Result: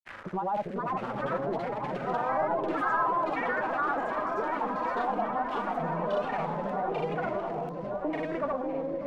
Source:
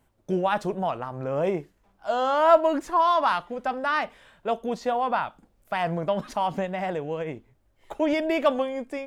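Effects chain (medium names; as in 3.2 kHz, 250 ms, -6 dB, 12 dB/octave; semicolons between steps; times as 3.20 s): zero-crossing glitches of -14 dBFS; bass shelf 230 Hz +5.5 dB; saturation -19.5 dBFS, distortion -11 dB; LFO low-pass saw down 1.1 Hz 390–2200 Hz; granulator, pitch spread up and down by 0 st; delay with an opening low-pass 590 ms, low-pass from 400 Hz, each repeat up 1 oct, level -3 dB; ever faster or slower copies 491 ms, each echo +4 st, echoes 2; three bands compressed up and down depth 40%; trim -8.5 dB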